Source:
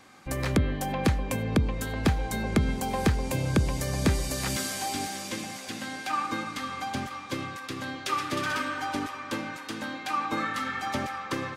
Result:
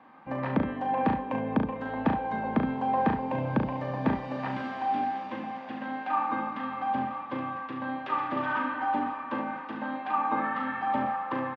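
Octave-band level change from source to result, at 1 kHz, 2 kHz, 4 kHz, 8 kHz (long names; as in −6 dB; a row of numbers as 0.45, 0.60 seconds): +4.5 dB, −2.5 dB, −14.0 dB, below −35 dB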